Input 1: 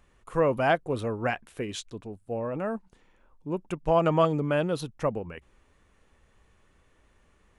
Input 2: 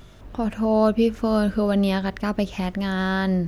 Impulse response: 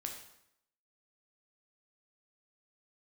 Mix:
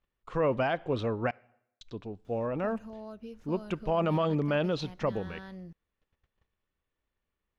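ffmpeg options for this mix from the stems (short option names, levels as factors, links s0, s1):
-filter_complex "[0:a]lowpass=f=5600:w=0.5412,lowpass=f=5600:w=1.3066,agate=range=0.0794:threshold=0.00141:ratio=16:detection=peak,equalizer=f=3500:w=1.5:g=3.5,volume=0.891,asplit=3[s0][s1][s2];[s0]atrim=end=1.31,asetpts=PTS-STARTPTS,afade=t=out:st=1.306:d=0.004:c=hsin[s3];[s1]atrim=start=1.31:end=1.81,asetpts=PTS-STARTPTS,volume=0[s4];[s2]atrim=start=1.81,asetpts=PTS-STARTPTS,afade=t=in:d=0.004:c=hsin[s5];[s3][s4][s5]concat=n=3:v=0:a=1,asplit=2[s6][s7];[s7]volume=0.0944[s8];[1:a]equalizer=f=5700:t=o:w=0.41:g=2.5,acompressor=threshold=0.0501:ratio=2.5,adelay=2250,volume=0.133[s9];[2:a]atrim=start_sample=2205[s10];[s8][s10]afir=irnorm=-1:irlink=0[s11];[s6][s9][s11]amix=inputs=3:normalize=0,alimiter=limit=0.112:level=0:latency=1:release=36"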